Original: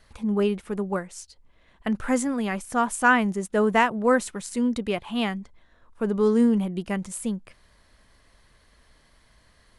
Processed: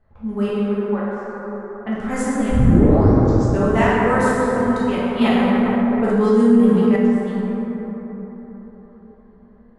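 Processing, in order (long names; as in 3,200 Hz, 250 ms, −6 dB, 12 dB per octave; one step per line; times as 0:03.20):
0:00.48–0:01.12: elliptic band-pass filter 380–3,900 Hz
low-pass that shuts in the quiet parts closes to 890 Hz, open at −21 dBFS
0:02.49: tape start 1.16 s
dense smooth reverb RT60 4.6 s, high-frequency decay 0.3×, DRR −9.5 dB
0:05.21–0:06.96: envelope flattener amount 50%
level −5 dB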